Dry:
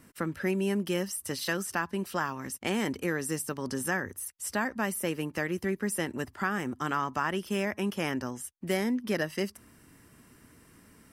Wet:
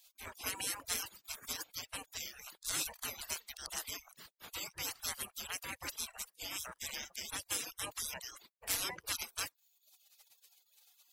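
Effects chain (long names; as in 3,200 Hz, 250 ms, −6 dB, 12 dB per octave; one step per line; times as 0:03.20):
gate on every frequency bin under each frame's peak −30 dB weak
reverb reduction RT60 0.84 s
level +11.5 dB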